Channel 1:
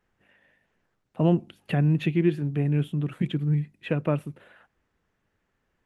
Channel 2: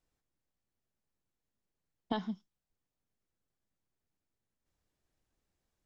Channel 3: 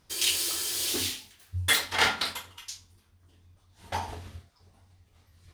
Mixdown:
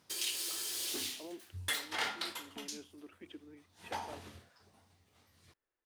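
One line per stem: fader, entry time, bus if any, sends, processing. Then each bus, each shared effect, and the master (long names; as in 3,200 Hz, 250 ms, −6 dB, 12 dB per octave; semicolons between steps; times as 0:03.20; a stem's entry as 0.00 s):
−16.0 dB, 0.00 s, no send, Butterworth high-pass 290 Hz 36 dB per octave; brickwall limiter −22 dBFS, peak gain reduction 7.5 dB
−19.0 dB, 0.45 s, no send, no processing
−1.5 dB, 0.00 s, no send, high-pass filter 160 Hz 12 dB per octave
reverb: not used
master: downward compressor 2 to 1, threshold −41 dBFS, peak gain reduction 11.5 dB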